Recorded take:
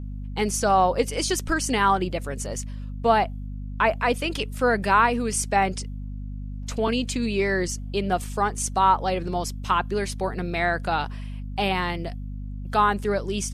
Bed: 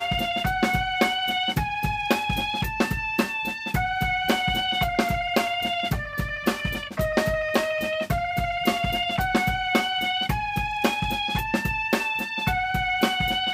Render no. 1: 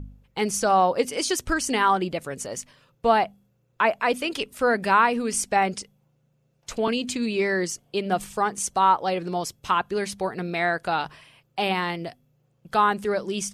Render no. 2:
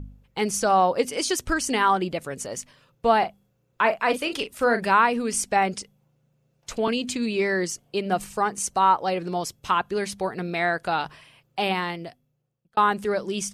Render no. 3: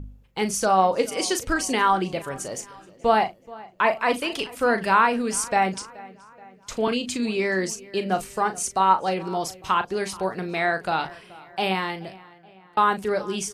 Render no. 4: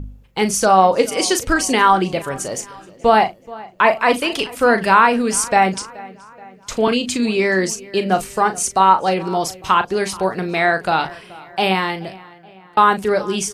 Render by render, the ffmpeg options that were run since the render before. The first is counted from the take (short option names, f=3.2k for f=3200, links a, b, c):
-af "bandreject=f=50:t=h:w=4,bandreject=f=100:t=h:w=4,bandreject=f=150:t=h:w=4,bandreject=f=200:t=h:w=4,bandreject=f=250:t=h:w=4"
-filter_complex "[0:a]asettb=1/sr,asplit=3[a][b][c];[a]atrim=end=3.184[d];[b]atrim=start=3.18:end=4.87,asetpts=PTS-STARTPTS,afade=t=in:d=0.004:c=qsin,afade=t=out:st=1.686:d=0.004:c=qsin,asplit=2[e][f];[f]adelay=38,volume=-10dB[g];[e][g]amix=inputs=2:normalize=0,atrim=end_sample=74529[h];[c]atrim=start=4.866[i];[d][h]acrossfade=d=0.004:c1=hsin:c2=qsin[j];[j][i]acrossfade=d=0.004:c1=qsin:c2=hsin,asettb=1/sr,asplit=3[k][l][m];[k]atrim=end=7.884[n];[l]atrim=start=7.88:end=9.21,asetpts=PTS-STARTPTS,afade=t=in:d=0.004:c=qsin,afade=t=out:st=1.326:d=0.004:c=qsin,bandreject=f=3.4k:w=12[o];[m]atrim=start=9.206[p];[n][o]acrossfade=d=0.004:c1=hsin:c2=qsin[q];[q][p]acrossfade=d=0.004:c1=qsin:c2=hsin,asplit=2[r][s];[r]atrim=end=12.77,asetpts=PTS-STARTPTS,afade=t=out:st=11.69:d=1.08[t];[s]atrim=start=12.77,asetpts=PTS-STARTPTS,afade=t=in:d=0.004:c=hsin[u];[t][u]concat=n=2:v=0:a=1"
-filter_complex "[0:a]asplit=2[a][b];[b]adelay=37,volume=-10dB[c];[a][c]amix=inputs=2:normalize=0,asplit=2[d][e];[e]adelay=427,lowpass=f=3.4k:p=1,volume=-20.5dB,asplit=2[f][g];[g]adelay=427,lowpass=f=3.4k:p=1,volume=0.54,asplit=2[h][i];[i]adelay=427,lowpass=f=3.4k:p=1,volume=0.54,asplit=2[j][k];[k]adelay=427,lowpass=f=3.4k:p=1,volume=0.54[l];[d][f][h][j][l]amix=inputs=5:normalize=0"
-af "volume=7dB,alimiter=limit=-1dB:level=0:latency=1"